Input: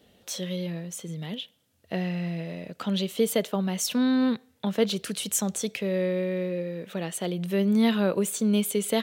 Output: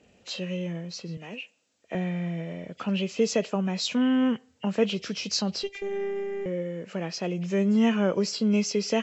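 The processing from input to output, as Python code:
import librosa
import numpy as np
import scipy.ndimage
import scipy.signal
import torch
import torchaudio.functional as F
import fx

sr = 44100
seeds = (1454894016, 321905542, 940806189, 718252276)

y = fx.freq_compress(x, sr, knee_hz=1800.0, ratio=1.5)
y = fx.highpass(y, sr, hz=300.0, slope=12, at=(1.17, 1.95))
y = fx.robotise(y, sr, hz=398.0, at=(5.63, 6.46))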